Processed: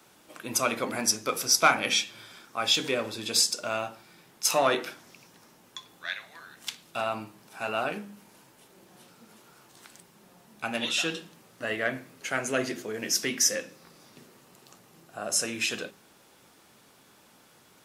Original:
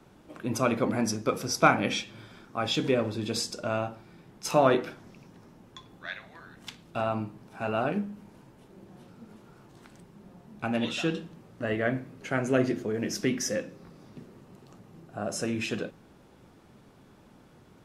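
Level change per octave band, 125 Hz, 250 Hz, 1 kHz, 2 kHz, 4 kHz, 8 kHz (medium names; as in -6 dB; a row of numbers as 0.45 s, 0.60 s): -10.5 dB, -7.0 dB, 0.0 dB, +3.5 dB, +7.5 dB, +10.0 dB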